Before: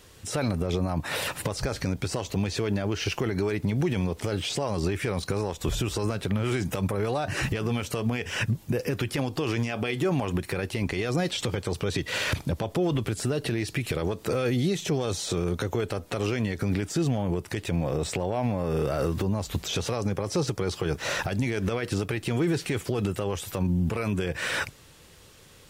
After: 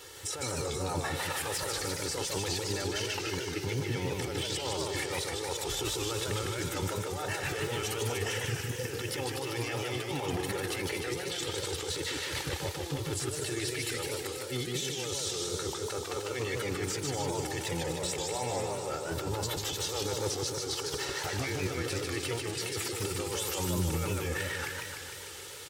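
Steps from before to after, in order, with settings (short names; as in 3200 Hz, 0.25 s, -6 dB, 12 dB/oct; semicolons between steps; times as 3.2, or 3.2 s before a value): HPF 190 Hz 6 dB/oct; low shelf 480 Hz -5 dB; notch 2500 Hz, Q 14; comb 2.3 ms, depth 91%; negative-ratio compressor -33 dBFS, ratio -0.5; limiter -25.5 dBFS, peak gain reduction 11.5 dB; on a send: thin delay 0.243 s, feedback 74%, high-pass 4800 Hz, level -5.5 dB; on the sum: warbling echo 0.151 s, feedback 63%, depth 186 cents, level -3 dB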